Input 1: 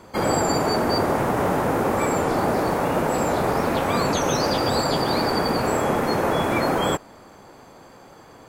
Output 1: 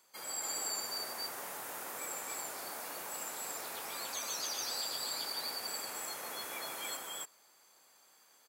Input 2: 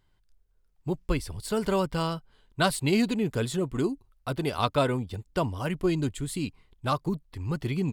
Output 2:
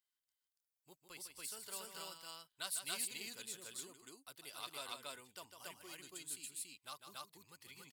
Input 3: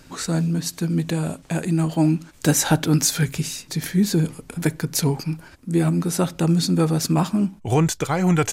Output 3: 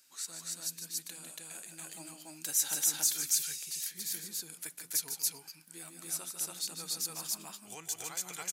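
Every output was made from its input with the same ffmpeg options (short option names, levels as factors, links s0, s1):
-af "aderivative,aecho=1:1:151.6|282.8:0.398|1,volume=0.398"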